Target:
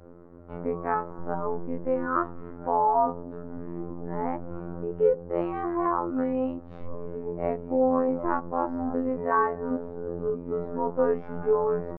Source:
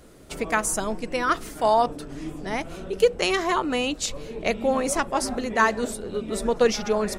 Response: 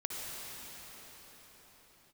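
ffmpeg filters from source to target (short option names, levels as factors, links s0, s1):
-filter_complex "[0:a]lowpass=f=1200:w=0.5412,lowpass=f=1200:w=1.3066,bandreject=f=670:w=12,asplit=2[s0][s1];[s1]acompressor=threshold=0.0251:ratio=4,volume=0.841[s2];[s0][s2]amix=inputs=2:normalize=0,afftfilt=real='hypot(re,im)*cos(PI*b)':imag='0':win_size=2048:overlap=0.75,atempo=0.6"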